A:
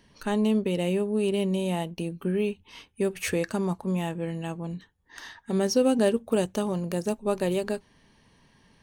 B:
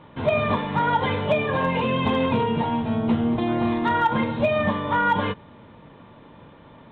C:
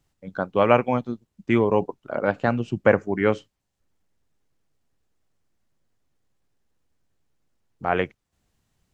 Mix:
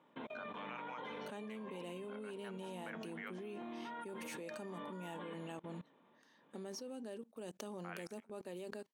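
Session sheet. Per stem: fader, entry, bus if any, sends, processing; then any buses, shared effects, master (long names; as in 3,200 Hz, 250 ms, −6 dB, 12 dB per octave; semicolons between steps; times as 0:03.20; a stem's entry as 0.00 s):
−6.5 dB, 1.05 s, no send, no echo send, no processing
−12.0 dB, 0.00 s, no send, echo send −15.5 dB, compressor whose output falls as the input rises −30 dBFS, ratio −1
−3.0 dB, 0.00 s, no send, echo send −17.5 dB, high-pass filter 1,400 Hz 12 dB per octave; downward compressor 1.5 to 1, threshold −47 dBFS, peak gain reduction 10 dB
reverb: not used
echo: repeating echo 184 ms, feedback 25%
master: high-pass filter 200 Hz 24 dB per octave; output level in coarse steps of 23 dB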